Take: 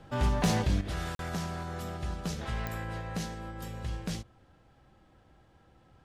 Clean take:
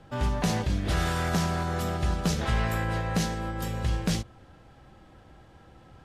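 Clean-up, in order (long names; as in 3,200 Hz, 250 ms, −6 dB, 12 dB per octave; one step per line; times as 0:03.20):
clipped peaks rebuilt −19.5 dBFS
click removal
repair the gap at 0:01.15, 42 ms
level 0 dB, from 0:00.81 +8.5 dB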